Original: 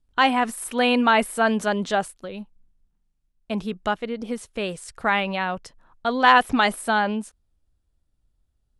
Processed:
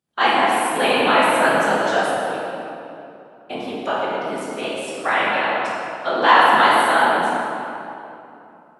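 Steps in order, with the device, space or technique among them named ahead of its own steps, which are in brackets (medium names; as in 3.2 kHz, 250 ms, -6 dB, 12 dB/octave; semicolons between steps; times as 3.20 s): whispering ghost (whisper effect; high-pass 350 Hz 12 dB/octave; reverberation RT60 2.9 s, pre-delay 9 ms, DRR -6.5 dB); trim -2 dB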